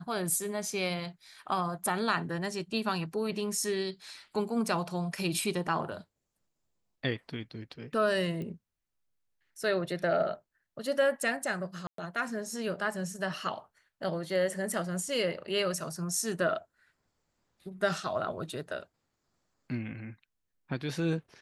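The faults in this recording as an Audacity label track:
8.420000	8.420000	pop -28 dBFS
11.870000	11.980000	gap 0.113 s

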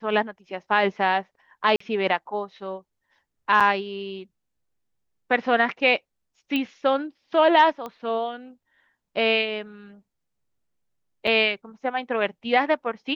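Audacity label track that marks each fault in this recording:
1.760000	1.800000	gap 44 ms
3.600000	3.610000	gap 6.5 ms
6.560000	6.560000	pop -14 dBFS
7.860000	7.860000	pop -21 dBFS
11.270000	11.270000	gap 4 ms

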